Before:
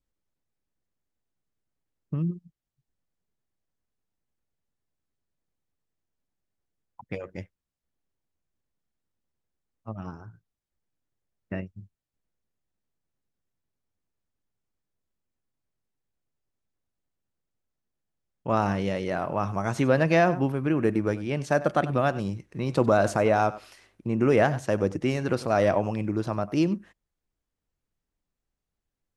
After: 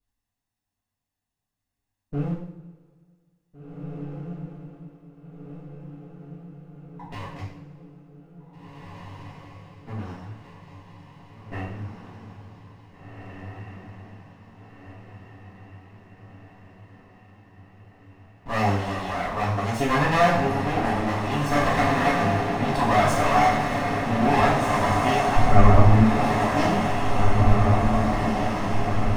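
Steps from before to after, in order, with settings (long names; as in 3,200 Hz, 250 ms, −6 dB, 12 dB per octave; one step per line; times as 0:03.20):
lower of the sound and its delayed copy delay 1.1 ms
0:25.36–0:26.00: spectral tilt −4.5 dB per octave
feedback delay with all-pass diffusion 1,909 ms, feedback 64%, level −3 dB
coupled-rooms reverb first 0.59 s, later 2 s, from −18 dB, DRR −8.5 dB
level −4 dB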